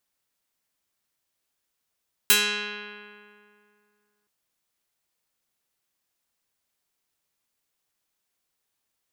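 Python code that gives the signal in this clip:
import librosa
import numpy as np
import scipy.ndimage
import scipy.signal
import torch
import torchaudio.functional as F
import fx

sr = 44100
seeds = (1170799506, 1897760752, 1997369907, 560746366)

y = fx.pluck(sr, length_s=1.97, note=56, decay_s=2.41, pick=0.35, brightness='medium')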